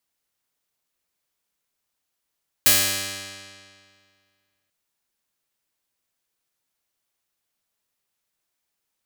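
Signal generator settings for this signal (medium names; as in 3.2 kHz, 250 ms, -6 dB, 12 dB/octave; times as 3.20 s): plucked string G2, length 2.04 s, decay 2.08 s, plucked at 0.22, bright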